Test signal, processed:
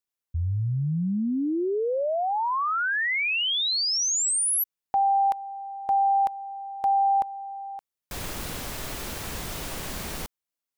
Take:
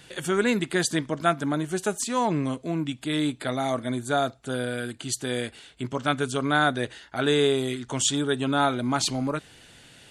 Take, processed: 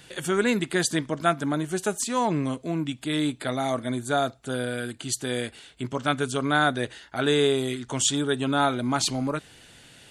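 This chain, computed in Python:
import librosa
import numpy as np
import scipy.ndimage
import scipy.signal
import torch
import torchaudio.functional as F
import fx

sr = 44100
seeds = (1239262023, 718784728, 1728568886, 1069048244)

y = fx.high_shelf(x, sr, hz=10000.0, db=3.0)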